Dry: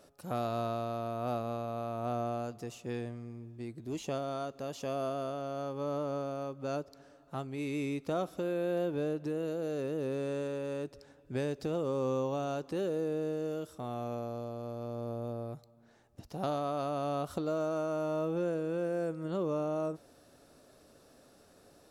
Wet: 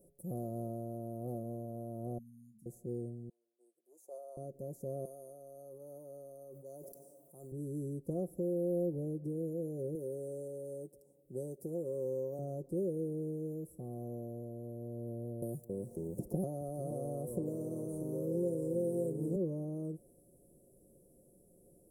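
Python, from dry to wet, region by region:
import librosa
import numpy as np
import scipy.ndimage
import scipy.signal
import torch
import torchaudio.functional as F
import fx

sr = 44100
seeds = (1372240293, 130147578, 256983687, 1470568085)

y = fx.chain(x, sr, fx.brickwall_bandstop(low_hz=310.0, high_hz=3100.0),
    fx.low_shelf(hz=74.0, db=-11.0),
    fx.comb_fb(f0_hz=220.0, decay_s=0.29, harmonics='all', damping=0.0, mix_pct=80), at=(2.18, 2.66))
y = fx.chain(y, sr, fx.highpass(hz=600.0, slope=24),
    fx.peak_eq(hz=1800.0, db=8.0, octaves=1.1),
    fx.upward_expand(threshold_db=-58.0, expansion=1.5), at=(3.29, 4.37))
y = fx.chain(y, sr, fx.highpass(hz=1300.0, slope=6),
    fx.high_shelf(hz=10000.0, db=8.5),
    fx.sustainer(db_per_s=29.0), at=(5.05, 7.52))
y = fx.chain(y, sr, fx.highpass(hz=350.0, slope=6),
    fx.high_shelf(hz=6800.0, db=7.0), at=(9.95, 12.39))
y = fx.chain(y, sr, fx.echo_pitch(ms=271, semitones=-3, count=2, db_per_echo=-6.0),
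    fx.bass_treble(bass_db=-3, treble_db=5),
    fx.band_squash(depth_pct=100), at=(15.42, 19.36))
y = scipy.signal.sosfilt(scipy.signal.ellip(3, 1.0, 80, [470.0, 9600.0], 'bandstop', fs=sr, output='sos'), y)
y = fx.peak_eq(y, sr, hz=350.0, db=-4.0, octaves=1.7)
y = y + 0.53 * np.pad(y, (int(5.6 * sr / 1000.0), 0))[:len(y)]
y = F.gain(torch.from_numpy(y), 1.0).numpy()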